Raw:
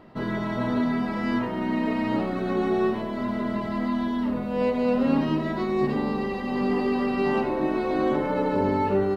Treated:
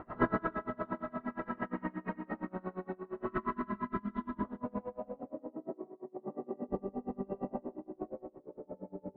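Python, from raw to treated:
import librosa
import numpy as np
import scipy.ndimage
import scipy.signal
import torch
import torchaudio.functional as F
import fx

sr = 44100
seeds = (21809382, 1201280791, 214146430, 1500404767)

y = fx.chorus_voices(x, sr, voices=6, hz=0.99, base_ms=19, depth_ms=3.0, mix_pct=45)
y = fx.rev_freeverb(y, sr, rt60_s=2.3, hf_ratio=0.9, predelay_ms=55, drr_db=-8.5)
y = fx.filter_sweep_lowpass(y, sr, from_hz=1400.0, to_hz=590.0, start_s=4.09, end_s=5.47, q=2.0)
y = fx.spec_box(y, sr, start_s=3.27, length_s=1.17, low_hz=430.0, high_hz=900.0, gain_db=-13)
y = fx.over_compress(y, sr, threshold_db=-32.0, ratio=-1.0)
y = fx.bandpass_edges(y, sr, low_hz=200.0, high_hz=2500.0, at=(5.25, 6.69))
y = fx.echo_feedback(y, sr, ms=162, feedback_pct=60, wet_db=-11.5)
y = y * 10.0 ** (-28 * (0.5 - 0.5 * np.cos(2.0 * np.pi * 8.6 * np.arange(len(y)) / sr)) / 20.0)
y = y * librosa.db_to_amplitude(-3.0)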